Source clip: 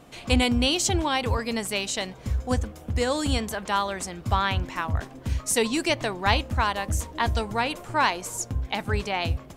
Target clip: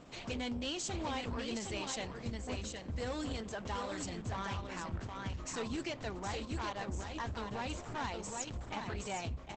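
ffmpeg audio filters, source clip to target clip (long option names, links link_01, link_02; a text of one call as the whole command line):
ffmpeg -i in.wav -af "acompressor=threshold=-32dB:ratio=2,asoftclip=type=tanh:threshold=-30dB,flanger=delay=3.8:depth=6:regen=-81:speed=1:shape=triangular,aecho=1:1:768:0.596,aresample=32000,aresample=44100,volume=1dB" -ar 48000 -c:a libopus -b:a 12k out.opus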